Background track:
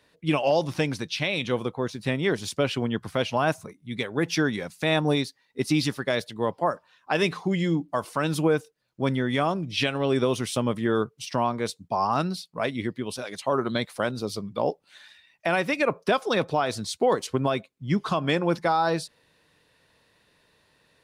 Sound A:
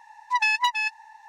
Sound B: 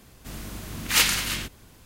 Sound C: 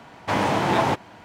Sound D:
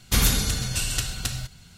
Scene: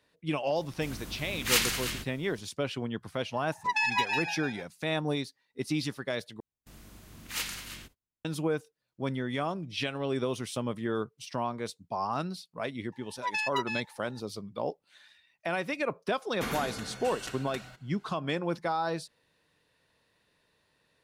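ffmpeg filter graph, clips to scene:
-filter_complex "[2:a]asplit=2[a][b];[1:a]asplit=2[c][d];[0:a]volume=-7.5dB[e];[c]asplit=7[f][g][h][i][j][k][l];[g]adelay=151,afreqshift=-68,volume=-6.5dB[m];[h]adelay=302,afreqshift=-136,volume=-12.7dB[n];[i]adelay=453,afreqshift=-204,volume=-18.9dB[o];[j]adelay=604,afreqshift=-272,volume=-25.1dB[p];[k]adelay=755,afreqshift=-340,volume=-31.3dB[q];[l]adelay=906,afreqshift=-408,volume=-37.5dB[r];[f][m][n][o][p][q][r]amix=inputs=7:normalize=0[s];[b]agate=range=-32dB:threshold=-41dB:ratio=16:release=205:detection=peak[t];[4:a]acrossover=split=210 2300:gain=0.0708 1 0.158[u][v][w];[u][v][w]amix=inputs=3:normalize=0[x];[e]asplit=2[y][z];[y]atrim=end=6.404[aa];[t]atrim=end=1.85,asetpts=PTS-STARTPTS,volume=-14.5dB[ab];[z]atrim=start=8.246[ac];[a]atrim=end=1.85,asetpts=PTS-STARTPTS,volume=-5.5dB,afade=t=in:d=0.004:c=hsin,afade=t=out:st=1.846:d=0.004:c=hsin,adelay=560[ad];[s]atrim=end=1.28,asetpts=PTS-STARTPTS,volume=-6dB,afade=t=in:d=0.004:c=hsin,afade=t=out:st=1.276:d=0.004:c=hsin,adelay=3340[ae];[d]atrim=end=1.28,asetpts=PTS-STARTPTS,volume=-9.5dB,afade=t=in:d=0.004:c=hsin,afade=t=out:st=1.276:d=0.004:c=hsin,adelay=12920[af];[x]atrim=end=1.77,asetpts=PTS-STARTPTS,volume=-4.5dB,afade=t=in:d=0.004:c=hsin,afade=t=out:st=1.766:d=0.004:c=hsin,adelay=16290[ag];[aa][ab]acrossfade=d=0.004:c1=hsin:c2=hsin[ah];[ah][ac]acrossfade=d=0.004:c1=hsin:c2=hsin[ai];[ai][ad][ae][af][ag]amix=inputs=5:normalize=0"

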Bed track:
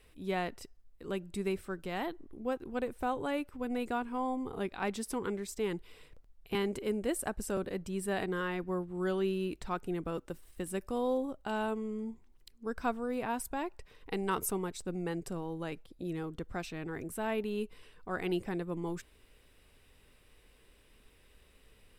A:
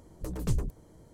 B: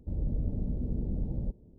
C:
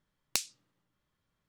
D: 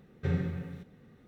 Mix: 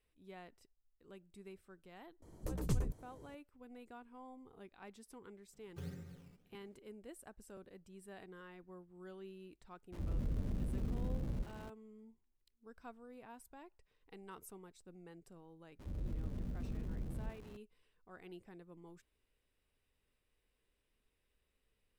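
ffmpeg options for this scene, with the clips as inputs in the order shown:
-filter_complex "[2:a]asplit=2[a][b];[0:a]volume=-19.5dB[c];[1:a]alimiter=limit=-19dB:level=0:latency=1:release=164[d];[4:a]acrusher=samples=12:mix=1:aa=0.000001:lfo=1:lforange=12:lforate=1.6[e];[a]aeval=exprs='val(0)+0.5*0.0112*sgn(val(0))':c=same[f];[b]aeval=exprs='val(0)+0.5*0.0106*sgn(val(0))':c=same[g];[d]atrim=end=1.13,asetpts=PTS-STARTPTS,volume=-4.5dB,afade=t=in:d=0.004:c=hsin,afade=t=out:st=1.126:d=0.004:c=hsin,adelay=2220[h];[e]atrim=end=1.27,asetpts=PTS-STARTPTS,volume=-16.5dB,afade=t=in:d=0.004:c=hsin,afade=t=out:st=1.266:d=0.004:c=hsin,adelay=243873S[i];[f]atrim=end=1.78,asetpts=PTS-STARTPTS,volume=-7.5dB,afade=t=in:d=0.004:c=hsin,afade=t=out:st=1.776:d=0.004:c=hsin,adelay=9920[j];[g]atrim=end=1.78,asetpts=PTS-STARTPTS,volume=-11dB,afade=t=in:d=0.004:c=hsin,afade=t=out:st=1.776:d=0.004:c=hsin,adelay=15790[k];[c][h][i][j][k]amix=inputs=5:normalize=0"

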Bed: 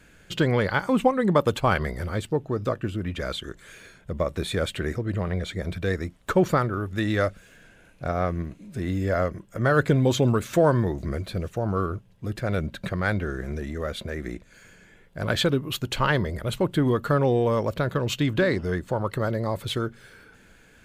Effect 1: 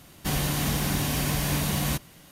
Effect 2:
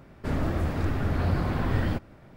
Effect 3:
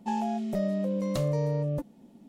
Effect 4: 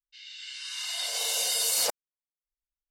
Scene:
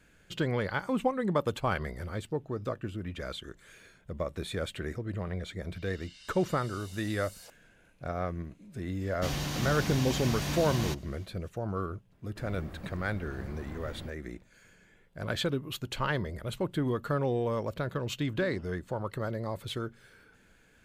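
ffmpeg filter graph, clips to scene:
-filter_complex "[0:a]volume=-8dB[a];[4:a]acompressor=threshold=-35dB:ratio=6:attack=3.2:release=140:knee=1:detection=peak[b];[1:a]highshelf=f=7.6k:t=q:w=1.5:g=-8[c];[2:a]highshelf=f=9k:g=8.5[d];[b]atrim=end=2.9,asetpts=PTS-STARTPTS,volume=-13.5dB,afade=t=in:d=0.004:c=hsin,afade=t=out:st=2.896:d=0.004:c=hsin,adelay=5600[e];[c]atrim=end=2.31,asetpts=PTS-STARTPTS,volume=-6.5dB,afade=t=in:d=0.05,afade=t=out:st=2.26:d=0.05,adelay=8970[f];[d]atrim=end=2.36,asetpts=PTS-STARTPTS,volume=-17.5dB,afade=t=in:d=0.004:c=hsin,afade=t=out:st=2.356:d=0.004:c=hsin,adelay=12120[g];[a][e][f][g]amix=inputs=4:normalize=0"

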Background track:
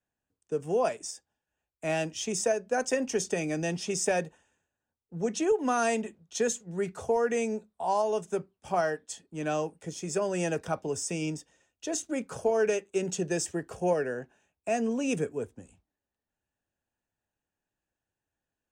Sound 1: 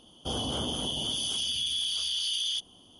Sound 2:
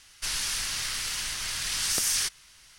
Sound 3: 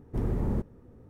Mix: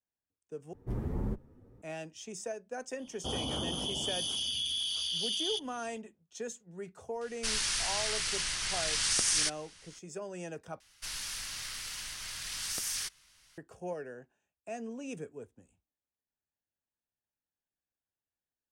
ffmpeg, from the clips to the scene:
-filter_complex "[2:a]asplit=2[a][b];[0:a]volume=-12dB[c];[3:a]asplit=2[d][e];[e]adelay=8.8,afreqshift=2.3[f];[d][f]amix=inputs=2:normalize=1[g];[a]aresample=22050,aresample=44100[h];[b]bandreject=f=380:w=12[i];[c]asplit=3[j][k][l];[j]atrim=end=0.734[m];[g]atrim=end=1.09,asetpts=PTS-STARTPTS,volume=-2.5dB[n];[k]atrim=start=1.816:end=10.804[o];[i]atrim=end=2.78,asetpts=PTS-STARTPTS,volume=-9dB[p];[l]atrim=start=13.576[q];[1:a]atrim=end=2.99,asetpts=PTS-STARTPTS,volume=-3.5dB,afade=t=in:d=0.004:c=hsin,afade=t=out:st=2.986:d=0.004:c=hsin,adelay=2990[r];[h]atrim=end=2.78,asetpts=PTS-STARTPTS,volume=-1.5dB,afade=t=in:d=0.004:c=hsin,afade=t=out:st=2.776:d=0.004:c=hsin,adelay=7210[s];[m][n]acrossfade=d=0.004:c1=hsin:c2=hsin[t];[t][o]acrossfade=d=0.004:c1=hsin:c2=hsin[u];[u][p]acrossfade=d=0.004:c1=hsin:c2=hsin[v];[v][q]acrossfade=d=0.004:c1=hsin:c2=hsin[w];[w][r][s]amix=inputs=3:normalize=0"

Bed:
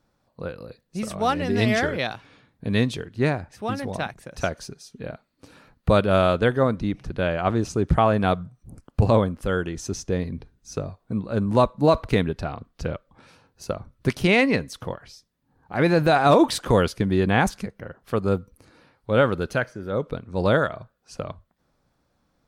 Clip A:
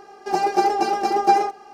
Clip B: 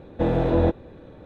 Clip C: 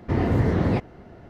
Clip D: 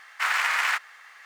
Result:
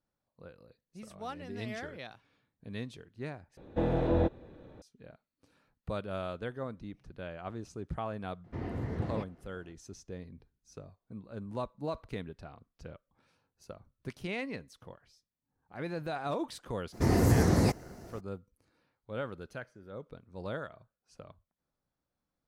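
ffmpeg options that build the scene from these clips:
-filter_complex "[3:a]asplit=2[a][b];[0:a]volume=-18.5dB[c];[a]aresample=32000,aresample=44100[d];[b]aexciter=amount=13.8:drive=2.5:freq=4.9k[e];[c]asplit=2[f][g];[f]atrim=end=3.574[h];[2:a]atrim=end=1.25,asetpts=PTS-STARTPTS,volume=-7.5dB[i];[g]atrim=start=4.816[j];[d]atrim=end=1.29,asetpts=PTS-STARTPTS,volume=-15.5dB,afade=t=in:d=0.004:c=hsin,afade=t=out:st=1.286:d=0.004:c=hsin,adelay=8440[k];[e]atrim=end=1.29,asetpts=PTS-STARTPTS,volume=-3.5dB,afade=t=in:d=0.02,afade=t=out:st=1.27:d=0.02,adelay=16920[l];[h][i]acrossfade=d=0.004:c1=hsin:c2=hsin[m];[m][j]acrossfade=d=0.004:c1=hsin:c2=hsin[n];[n][k][l]amix=inputs=3:normalize=0"

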